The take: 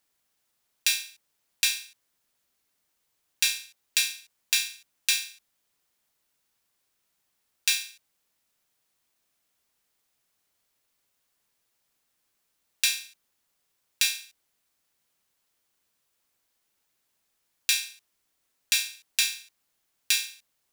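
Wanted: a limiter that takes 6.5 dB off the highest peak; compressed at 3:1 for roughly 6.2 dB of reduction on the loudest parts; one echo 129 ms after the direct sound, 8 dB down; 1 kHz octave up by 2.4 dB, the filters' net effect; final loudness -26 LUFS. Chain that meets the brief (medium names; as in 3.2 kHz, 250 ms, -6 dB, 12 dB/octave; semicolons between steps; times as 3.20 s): peaking EQ 1 kHz +3 dB; compression 3:1, threshold -27 dBFS; peak limiter -10 dBFS; delay 129 ms -8 dB; trim +8.5 dB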